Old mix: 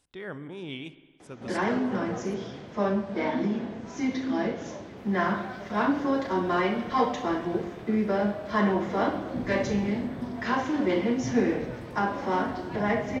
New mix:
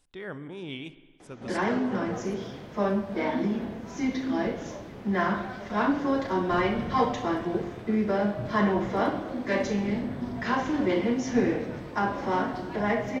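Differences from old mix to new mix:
second sound: entry -2.85 s; master: remove high-pass 47 Hz

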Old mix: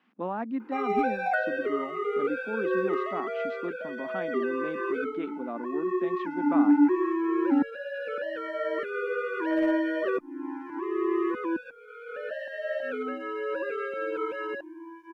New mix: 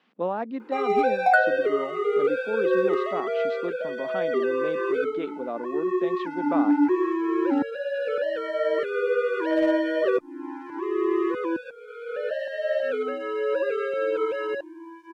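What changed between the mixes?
second sound +7.5 dB; master: add graphic EQ 125/250/500/4000/8000 Hz +7/-5/+9/+8/+7 dB

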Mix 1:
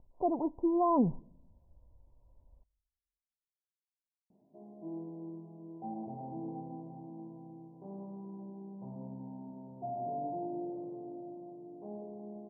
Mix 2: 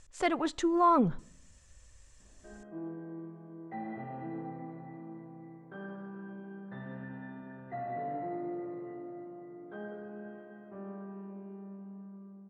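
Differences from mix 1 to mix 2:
background: entry -2.10 s; master: remove rippled Chebyshev low-pass 1 kHz, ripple 3 dB

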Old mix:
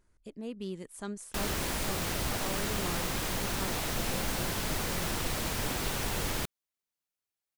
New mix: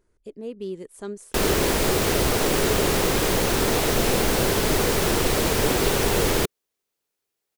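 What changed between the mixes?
background +9.5 dB; master: add peaking EQ 420 Hz +10 dB 0.79 oct

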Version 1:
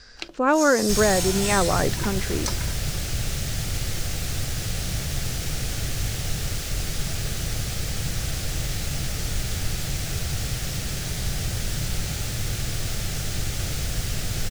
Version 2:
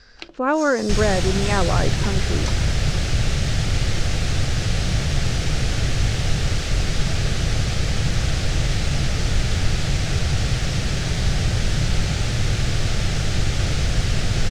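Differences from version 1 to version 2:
second sound +7.5 dB; master: add distance through air 96 m

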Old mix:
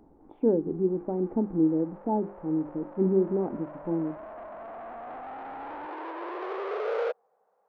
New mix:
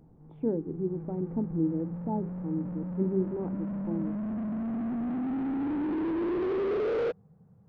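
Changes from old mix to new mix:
background: remove high-pass 580 Hz 24 dB/octave; master: add peaking EQ 580 Hz -8 dB 2.4 oct

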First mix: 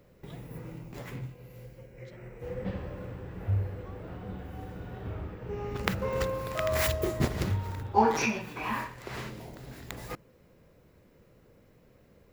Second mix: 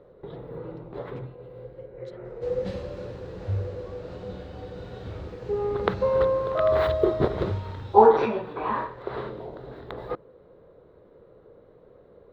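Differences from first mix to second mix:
first sound: add FFT filter 250 Hz 0 dB, 430 Hz +13 dB, 740 Hz +7 dB, 1.3 kHz +6 dB, 2.5 kHz -10 dB, 3.6 kHz -4 dB, 6.2 kHz -28 dB, 9.4 kHz -26 dB; second sound: remove low-pass 2.8 kHz; master: add peaking EQ 4 kHz +7 dB 0.31 oct

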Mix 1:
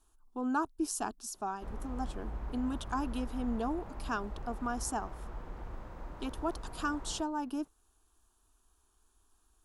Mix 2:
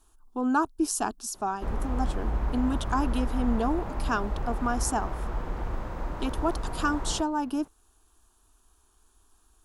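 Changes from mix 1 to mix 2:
speech +7.0 dB; background +11.5 dB

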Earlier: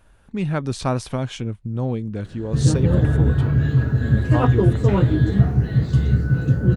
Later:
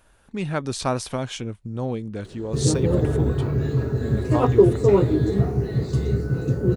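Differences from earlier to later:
background: add graphic EQ with 31 bands 400 Hz +11 dB, 1.6 kHz -10 dB, 3.15 kHz -11 dB; master: add tone controls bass -6 dB, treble +4 dB

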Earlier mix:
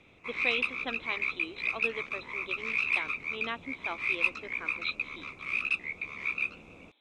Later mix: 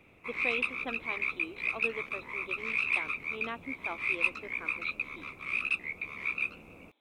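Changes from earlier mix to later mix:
speech: add treble shelf 2.2 kHz -10 dB; master: remove resonant low-pass 6.6 kHz, resonance Q 1.6

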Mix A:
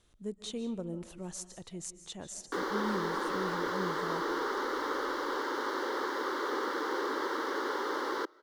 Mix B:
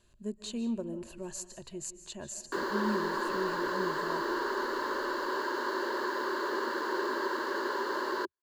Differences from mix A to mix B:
background: send off; master: add rippled EQ curve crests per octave 1.4, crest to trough 10 dB

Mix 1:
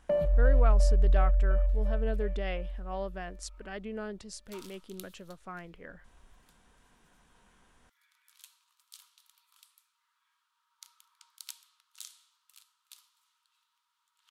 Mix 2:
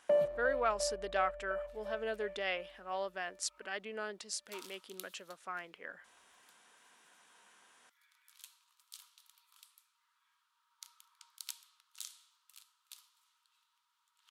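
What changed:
speech: add tilt shelf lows -5.5 dB, about 780 Hz; master: add high-pass 310 Hz 12 dB/octave

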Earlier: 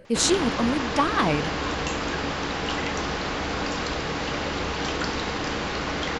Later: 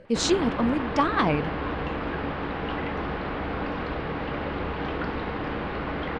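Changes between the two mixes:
background: add distance through air 410 m; master: add distance through air 94 m

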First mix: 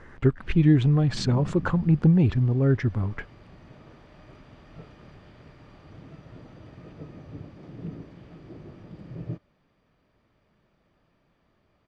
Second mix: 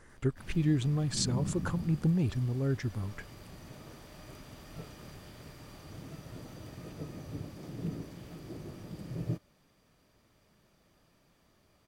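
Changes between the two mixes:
speech -9.5 dB; master: remove low-pass 2.9 kHz 12 dB/octave

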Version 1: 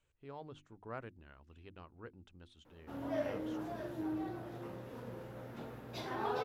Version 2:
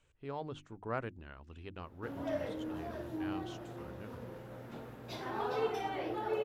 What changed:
speech +7.5 dB; background: entry -0.85 s

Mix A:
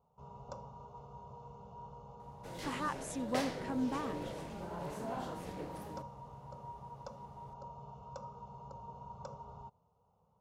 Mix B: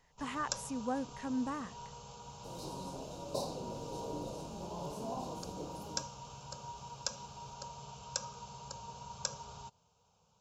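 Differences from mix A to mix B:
speech: entry -2.45 s; first sound: remove Savitzky-Golay filter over 65 samples; second sound: add brick-wall FIR band-stop 1.1–3.6 kHz

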